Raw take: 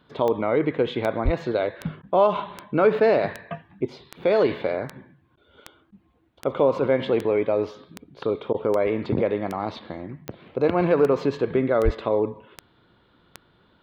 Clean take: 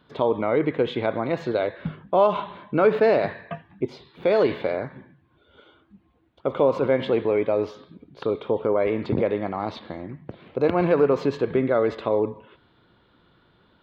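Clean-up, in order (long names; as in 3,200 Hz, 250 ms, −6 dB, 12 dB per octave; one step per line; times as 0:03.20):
click removal
0:01.24–0:01.36: high-pass filter 140 Hz 24 dB per octave
0:11.84–0:11.96: high-pass filter 140 Hz 24 dB per octave
repair the gap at 0:02.02/0:05.36/0:05.91/0:08.53, 11 ms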